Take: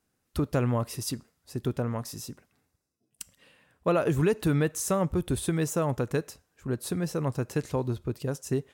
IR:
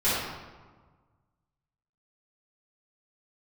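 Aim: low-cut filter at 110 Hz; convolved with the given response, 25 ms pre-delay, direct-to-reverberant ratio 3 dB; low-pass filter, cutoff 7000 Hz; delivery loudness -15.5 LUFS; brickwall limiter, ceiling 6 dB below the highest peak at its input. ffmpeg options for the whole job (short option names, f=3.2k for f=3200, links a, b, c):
-filter_complex "[0:a]highpass=110,lowpass=7k,alimiter=limit=-20dB:level=0:latency=1,asplit=2[a][b];[1:a]atrim=start_sample=2205,adelay=25[c];[b][c]afir=irnorm=-1:irlink=0,volume=-17dB[d];[a][d]amix=inputs=2:normalize=0,volume=14.5dB"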